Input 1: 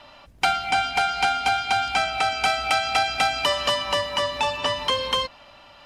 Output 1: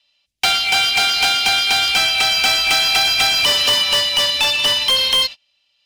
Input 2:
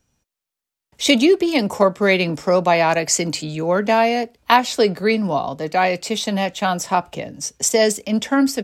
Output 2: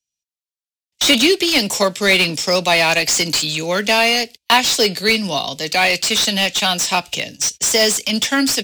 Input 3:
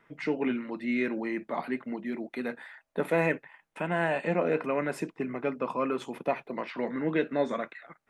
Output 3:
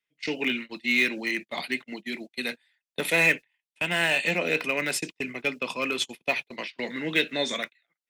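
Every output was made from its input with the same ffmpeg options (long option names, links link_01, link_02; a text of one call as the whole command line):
ffmpeg -i in.wav -filter_complex "[0:a]agate=range=-30dB:threshold=-35dB:ratio=16:detection=peak,acrossover=split=250|1400|2700[link_01][link_02][link_03][link_04];[link_03]acrusher=bits=5:mix=0:aa=0.000001[link_05];[link_04]asplit=2[link_06][link_07];[link_07]highpass=frequency=720:poles=1,volume=33dB,asoftclip=type=tanh:threshold=-4.5dB[link_08];[link_06][link_08]amix=inputs=2:normalize=0,lowpass=frequency=4800:poles=1,volume=-6dB[link_09];[link_01][link_02][link_05][link_09]amix=inputs=4:normalize=0,volume=-2dB" out.wav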